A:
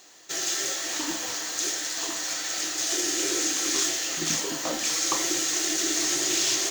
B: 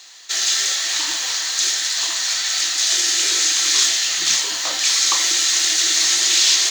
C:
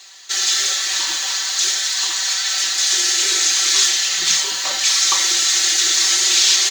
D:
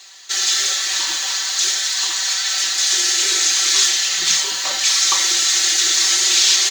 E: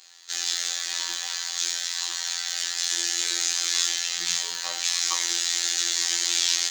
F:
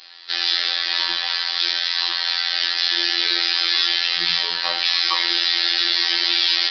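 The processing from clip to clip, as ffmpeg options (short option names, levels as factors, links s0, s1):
-af "equalizer=f=125:t=o:w=1:g=-10,equalizer=f=250:t=o:w=1:g=-10,equalizer=f=500:t=o:w=1:g=-4,equalizer=f=1000:t=o:w=1:g=4,equalizer=f=2000:t=o:w=1:g=6,equalizer=f=4000:t=o:w=1:g=12,equalizer=f=8000:t=o:w=1:g=5"
-af "aecho=1:1:5.2:0.78,volume=0.891"
-af anull
-af "afftfilt=real='hypot(re,im)*cos(PI*b)':imag='0':win_size=2048:overlap=0.75,volume=0.501"
-af "aresample=11025,aresample=44100,apsyclip=3.98,volume=0.794"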